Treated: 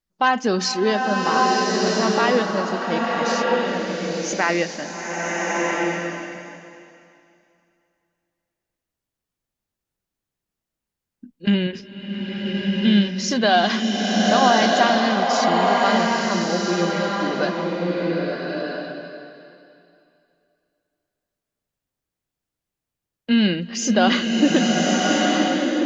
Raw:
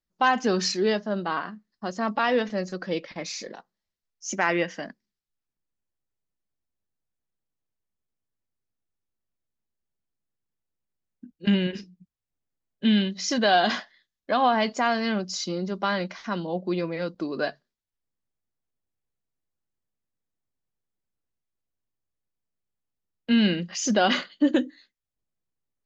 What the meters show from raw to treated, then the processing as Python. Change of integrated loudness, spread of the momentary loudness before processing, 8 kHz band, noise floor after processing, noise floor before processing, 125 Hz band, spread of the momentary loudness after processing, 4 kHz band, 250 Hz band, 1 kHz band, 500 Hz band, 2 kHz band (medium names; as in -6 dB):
+5.5 dB, 13 LU, no reading, under -85 dBFS, under -85 dBFS, +6.5 dB, 11 LU, +7.0 dB, +6.5 dB, +7.5 dB, +7.0 dB, +7.0 dB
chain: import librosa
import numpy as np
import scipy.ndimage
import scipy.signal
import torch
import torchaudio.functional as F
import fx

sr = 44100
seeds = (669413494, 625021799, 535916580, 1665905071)

y = fx.buffer_glitch(x, sr, at_s=(10.97,), block=1024, repeats=5)
y = fx.rev_bloom(y, sr, seeds[0], attack_ms=1280, drr_db=-2.0)
y = F.gain(torch.from_numpy(y), 3.0).numpy()